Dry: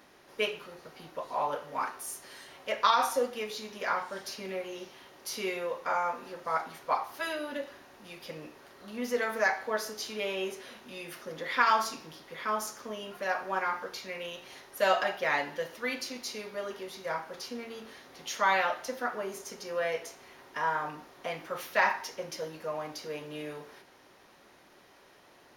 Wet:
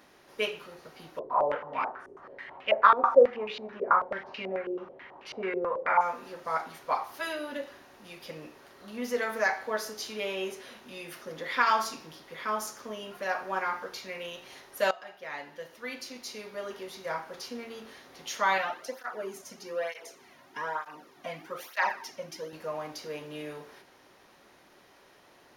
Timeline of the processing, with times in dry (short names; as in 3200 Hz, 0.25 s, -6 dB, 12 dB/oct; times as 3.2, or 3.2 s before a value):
1.19–6.01 stepped low-pass 9.2 Hz 420–2700 Hz
14.91–16.83 fade in, from -20 dB
18.58–22.53 tape flanging out of phase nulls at 1.1 Hz, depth 2.6 ms